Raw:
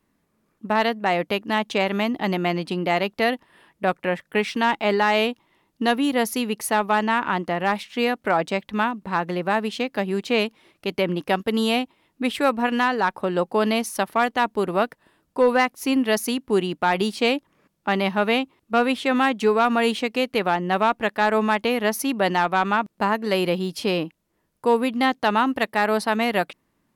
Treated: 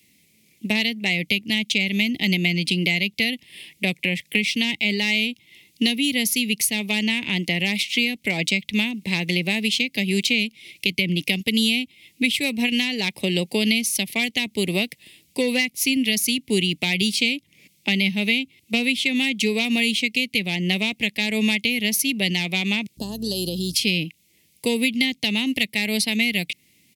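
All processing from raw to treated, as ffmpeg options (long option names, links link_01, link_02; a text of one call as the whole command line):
ffmpeg -i in.wav -filter_complex "[0:a]asettb=1/sr,asplit=3[link_01][link_02][link_03];[link_01]atrim=end=22.974[link_04];[link_02]atrim=start=22.97:end=23.74,asetpts=PTS-STARTPTS,afade=type=in:duration=0.004:curve=qsin,afade=type=out:start_time=0.766:duration=0.004:curve=qsin,acompressor=threshold=-28dB:ratio=4:attack=3.2:release=140:knee=1:detection=peak,aeval=exprs='val(0)+0.00562*(sin(2*PI*60*n/s)+sin(2*PI*2*60*n/s)/2+sin(2*PI*3*60*n/s)/3+sin(2*PI*4*60*n/s)/4+sin(2*PI*5*60*n/s)/5)':channel_layout=same,asuperstop=centerf=2200:order=4:qfactor=0.72[link_05];[link_03]atrim=start=23.736[link_06];[link_04][link_05]acrossfade=duration=0.004:curve1=hsin:curve2=qsin[link_07];[link_07][link_06]acrossfade=duration=0.004:curve1=qsin:curve2=hsin,firequalizer=gain_entry='entry(130,0);entry(1400,-30);entry(2100,12)':delay=0.05:min_phase=1,acrossover=split=210[link_08][link_09];[link_09]acompressor=threshold=-28dB:ratio=6[link_10];[link_08][link_10]amix=inputs=2:normalize=0,highpass=85,volume=8dB" out.wav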